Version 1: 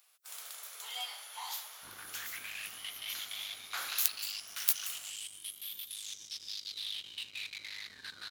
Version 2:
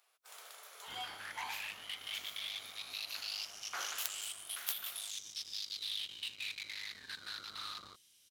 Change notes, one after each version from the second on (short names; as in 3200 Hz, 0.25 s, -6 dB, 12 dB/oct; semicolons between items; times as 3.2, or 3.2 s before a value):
first sound: add tilt -3 dB/oct; second sound: entry -0.95 s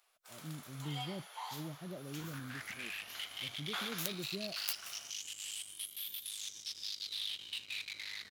speech: unmuted; second sound: entry +1.30 s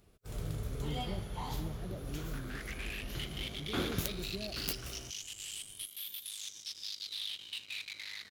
first sound: remove HPF 780 Hz 24 dB/oct